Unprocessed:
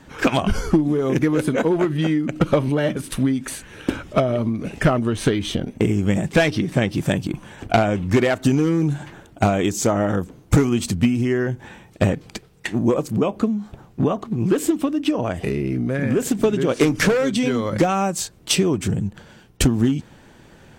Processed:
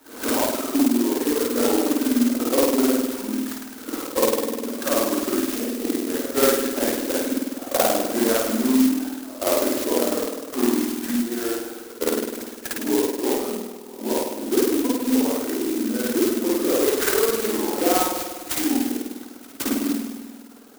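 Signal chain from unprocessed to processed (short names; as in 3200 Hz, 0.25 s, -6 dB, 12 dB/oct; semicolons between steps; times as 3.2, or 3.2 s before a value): repeated pitch sweeps -4.5 st, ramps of 1.108 s; pre-echo 0.172 s -19.5 dB; spring tank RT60 1.8 s, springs 50 ms, chirp 25 ms, DRR -8.5 dB; reverb removal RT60 0.74 s; steep high-pass 230 Hz 96 dB/oct; clock jitter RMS 0.12 ms; gain -5.5 dB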